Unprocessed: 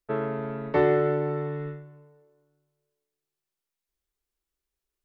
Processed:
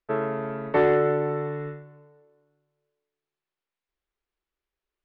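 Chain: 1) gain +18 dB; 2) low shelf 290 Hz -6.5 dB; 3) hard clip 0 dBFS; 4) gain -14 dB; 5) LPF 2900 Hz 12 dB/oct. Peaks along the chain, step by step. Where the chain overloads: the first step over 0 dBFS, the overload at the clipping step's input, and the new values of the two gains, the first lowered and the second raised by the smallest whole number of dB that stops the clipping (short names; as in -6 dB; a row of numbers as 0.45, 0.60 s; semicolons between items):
+7.0, +4.5, 0.0, -14.0, -13.5 dBFS; step 1, 4.5 dB; step 1 +13 dB, step 4 -9 dB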